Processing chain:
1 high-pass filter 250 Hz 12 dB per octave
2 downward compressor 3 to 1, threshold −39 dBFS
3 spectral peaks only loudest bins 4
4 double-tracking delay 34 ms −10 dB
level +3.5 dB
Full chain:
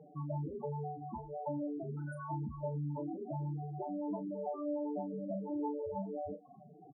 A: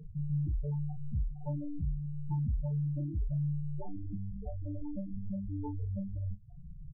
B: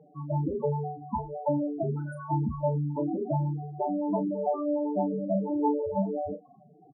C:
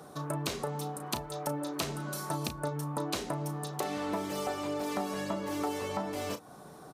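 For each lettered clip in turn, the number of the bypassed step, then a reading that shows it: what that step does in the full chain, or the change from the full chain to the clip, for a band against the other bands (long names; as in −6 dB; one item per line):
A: 1, 125 Hz band +19.0 dB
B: 2, average gain reduction 7.5 dB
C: 3, 2 kHz band +13.0 dB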